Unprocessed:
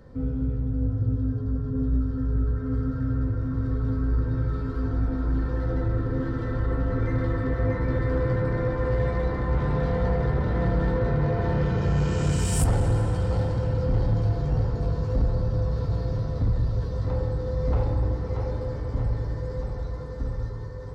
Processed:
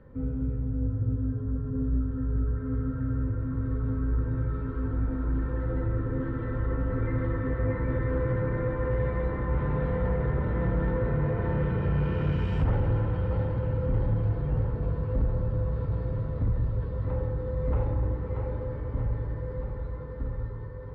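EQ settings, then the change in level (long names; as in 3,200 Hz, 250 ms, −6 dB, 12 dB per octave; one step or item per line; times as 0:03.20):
Butterworth band-reject 720 Hz, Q 8
low-pass filter 2,800 Hz 24 dB per octave
−3.0 dB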